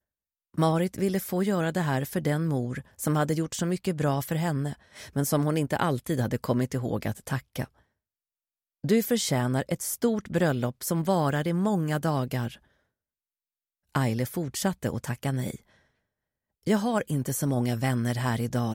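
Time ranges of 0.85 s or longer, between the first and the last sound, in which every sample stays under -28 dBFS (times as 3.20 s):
7.64–8.84 s
12.48–13.95 s
15.54–16.67 s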